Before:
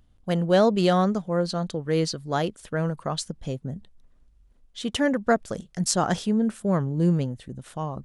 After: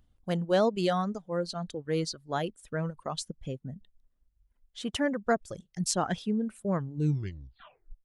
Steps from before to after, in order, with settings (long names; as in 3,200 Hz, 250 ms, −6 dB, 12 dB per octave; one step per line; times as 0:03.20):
turntable brake at the end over 1.12 s
reverb reduction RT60 1.6 s
level −5 dB
AAC 192 kbit/s 48,000 Hz